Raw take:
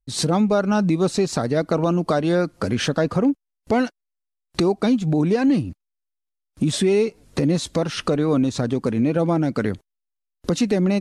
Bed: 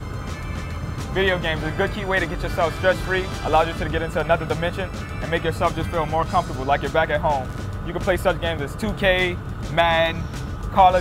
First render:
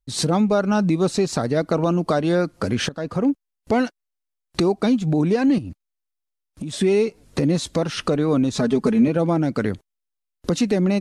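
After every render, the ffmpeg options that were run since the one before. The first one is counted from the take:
-filter_complex "[0:a]asettb=1/sr,asplit=3[a][b][c];[a]atrim=end=5.584[d];[b]atrim=start=5.58:end=6.81,asetpts=PTS-STARTPTS,afade=t=in:d=0.004:c=qsin,afade=t=out:st=1.226:d=0.004:c=qsin,acompressor=threshold=-27dB:ratio=5:attack=3.2:release=140:knee=1:detection=peak[e];[c]atrim=start=6.806[f];[d][e]acrossfade=d=0.004:c1=hsin:c2=qsin[g];[g][f]acrossfade=d=0.004:c1=qsin:c2=hsin,asettb=1/sr,asplit=3[h][i][j];[h]atrim=end=8.524[k];[i]atrim=start=8.52:end=9.08,asetpts=PTS-STARTPTS,afade=t=in:d=0.004:c=qsin,afade=t=out:st=0.556:d=0.004:c=qsin,aecho=1:1:4.7:0.94,atrim=end_sample=24696[l];[j]atrim=start=9.076[m];[k][l]acrossfade=d=0.004:c1=hsin:c2=qsin[n];[n][m]acrossfade=d=0.004:c1=qsin:c2=hsin,asplit=2[o][p];[o]atrim=end=2.89,asetpts=PTS-STARTPTS,afade=t=out:st=2.886:d=0.004:c=hsin:silence=0.133352[q];[p]atrim=start=2.89,asetpts=PTS-STARTPTS,afade=t=in:d=0.42:silence=0.133352[r];[q][r]concat=n=2:v=0:a=1"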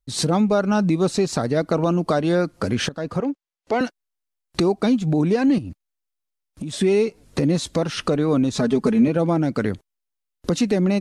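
-filter_complex "[0:a]asettb=1/sr,asplit=3[a][b][c];[a]atrim=end=3.204[d];[b]atrim=start=3.2:end=3.81,asetpts=PTS-STARTPTS,afade=t=in:d=0.004:c=qsin,afade=t=out:st=0.606:d=0.004:c=qsin,acrossover=split=300 7200:gain=0.158 1 0.141[e][f][g];[e][f][g]amix=inputs=3:normalize=0[h];[c]atrim=start=3.806[i];[d][h]acrossfade=d=0.004:c1=hsin:c2=qsin[j];[j][i]acrossfade=d=0.004:c1=qsin:c2=hsin"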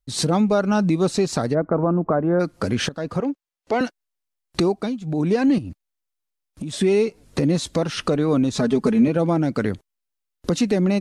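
-filter_complex "[0:a]asplit=3[a][b][c];[a]afade=t=out:st=1.53:d=0.02[d];[b]lowpass=f=1.5k:w=0.5412,lowpass=f=1.5k:w=1.3066,afade=t=in:st=1.53:d=0.02,afade=t=out:st=2.39:d=0.02[e];[c]afade=t=in:st=2.39:d=0.02[f];[d][e][f]amix=inputs=3:normalize=0,asplit=3[g][h][i];[g]atrim=end=4.95,asetpts=PTS-STARTPTS,afade=t=out:st=4.64:d=0.31:silence=0.316228[j];[h]atrim=start=4.95:end=5.01,asetpts=PTS-STARTPTS,volume=-10dB[k];[i]atrim=start=5.01,asetpts=PTS-STARTPTS,afade=t=in:d=0.31:silence=0.316228[l];[j][k][l]concat=n=3:v=0:a=1"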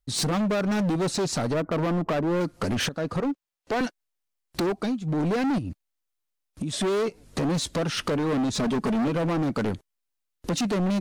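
-af "asoftclip=type=hard:threshold=-22.5dB"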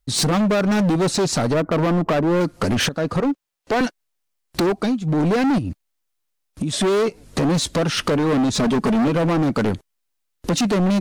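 -af "volume=6.5dB"

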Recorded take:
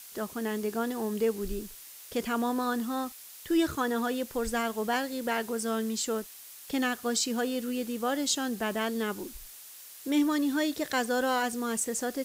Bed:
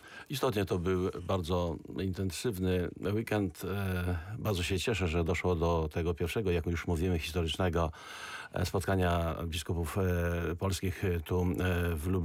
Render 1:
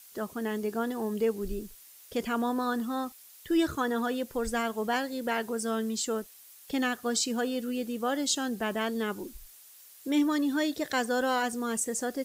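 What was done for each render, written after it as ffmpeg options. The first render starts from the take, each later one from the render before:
-af "afftdn=nr=7:nf=-48"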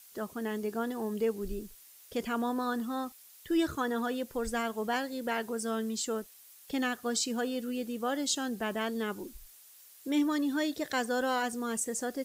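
-af "volume=-2.5dB"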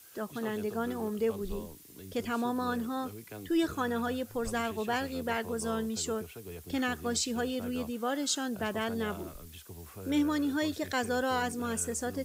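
-filter_complex "[1:a]volume=-14dB[a];[0:a][a]amix=inputs=2:normalize=0"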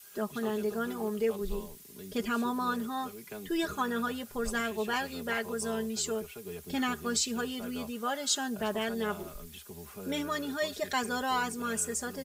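-af "aecho=1:1:4.9:0.78,adynamicequalizer=threshold=0.00708:dfrequency=230:dqfactor=0.87:tfrequency=230:tqfactor=0.87:attack=5:release=100:ratio=0.375:range=3:mode=cutabove:tftype=bell"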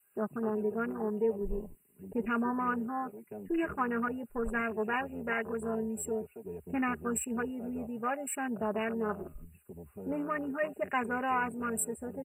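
-af "afwtdn=0.0141,afftfilt=real='re*(1-between(b*sr/4096,2900,7500))':imag='im*(1-between(b*sr/4096,2900,7500))':win_size=4096:overlap=0.75"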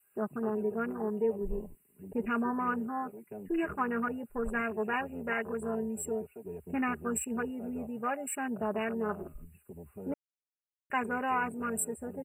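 -filter_complex "[0:a]asplit=3[a][b][c];[a]atrim=end=10.14,asetpts=PTS-STARTPTS,afade=t=out:st=10.136:d=0.004:c=hsin[d];[b]atrim=start=10.14:end=10.9,asetpts=PTS-STARTPTS,volume=0[e];[c]atrim=start=10.9,asetpts=PTS-STARTPTS,afade=t=in:d=0.004:c=hsin[f];[d][e][f]concat=n=3:v=0:a=1"

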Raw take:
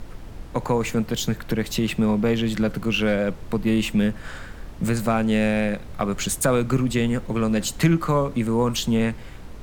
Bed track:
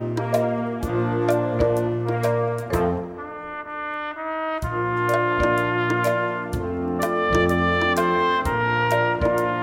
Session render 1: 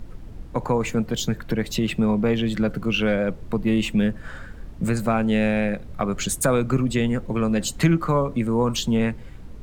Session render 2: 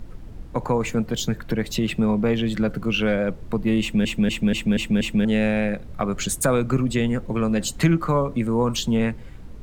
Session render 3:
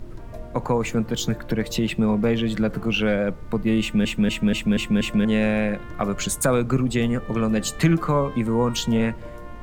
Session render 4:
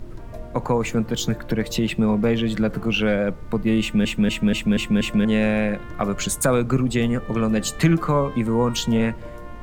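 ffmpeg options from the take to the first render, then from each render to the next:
-af "afftdn=nr=8:nf=-39"
-filter_complex "[0:a]asplit=7[a][b][c][d][e][f][g];[a]atrim=end=4.052[h];[b]atrim=start=3.808:end=4.052[i];[c]atrim=start=3.808:end=4.052[j];[d]atrim=start=3.808:end=4.052[k];[e]atrim=start=3.808:end=4.052[l];[f]atrim=start=3.808:end=4.052[m];[g]atrim=start=5.248[n];[h][i]acrossfade=d=0.004:c1=hsin:c2=hsin[o];[o][j]acrossfade=d=0.004:c1=hsin:c2=hsin[p];[p][k]acrossfade=d=0.004:c1=hsin:c2=hsin[q];[q][l]acrossfade=d=0.004:c1=hsin:c2=hsin[r];[r][m]acrossfade=d=0.004:c1=hsin:c2=hsin[s];[s][n]acrossfade=d=0.004:c1=hsin:c2=hsin"
-filter_complex "[1:a]volume=-20dB[a];[0:a][a]amix=inputs=2:normalize=0"
-af "volume=1dB"

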